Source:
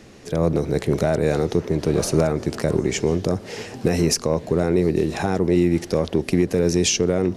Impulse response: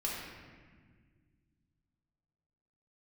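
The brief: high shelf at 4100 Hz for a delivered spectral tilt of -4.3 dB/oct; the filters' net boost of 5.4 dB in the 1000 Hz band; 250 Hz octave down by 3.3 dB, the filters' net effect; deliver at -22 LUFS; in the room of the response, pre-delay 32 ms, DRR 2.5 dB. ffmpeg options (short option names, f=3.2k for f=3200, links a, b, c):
-filter_complex "[0:a]equalizer=f=250:t=o:g=-6,equalizer=f=1k:t=o:g=7.5,highshelf=f=4.1k:g=7,asplit=2[a][b];[1:a]atrim=start_sample=2205,adelay=32[c];[b][c]afir=irnorm=-1:irlink=0,volume=-6.5dB[d];[a][d]amix=inputs=2:normalize=0,volume=-2.5dB"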